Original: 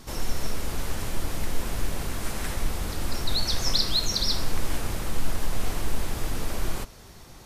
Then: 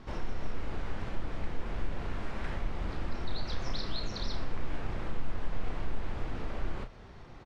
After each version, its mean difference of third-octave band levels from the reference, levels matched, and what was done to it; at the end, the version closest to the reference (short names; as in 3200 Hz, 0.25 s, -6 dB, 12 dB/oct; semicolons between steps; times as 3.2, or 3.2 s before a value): 8.0 dB: LPF 2500 Hz 12 dB/oct; compressor 1.5:1, threshold -32 dBFS, peak gain reduction 6.5 dB; doubler 32 ms -7.5 dB; Doppler distortion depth 0.21 ms; gain -2.5 dB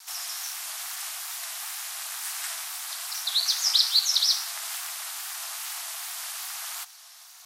16.5 dB: Chebyshev high-pass 870 Hz, order 8; high shelf 3100 Hz +11 dB; ring modulator 190 Hz; wow and flutter 74 cents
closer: first